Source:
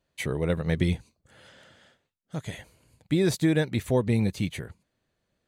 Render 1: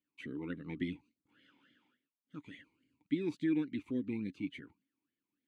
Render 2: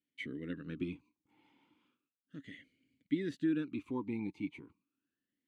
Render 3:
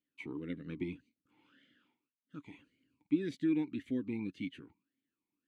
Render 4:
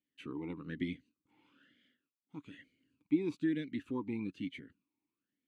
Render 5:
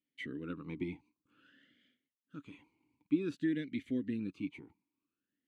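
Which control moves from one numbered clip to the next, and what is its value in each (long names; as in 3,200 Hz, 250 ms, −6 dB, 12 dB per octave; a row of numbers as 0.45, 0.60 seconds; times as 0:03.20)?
formant filter swept between two vowels, speed: 3.5, 0.35, 1.8, 1.1, 0.53 Hertz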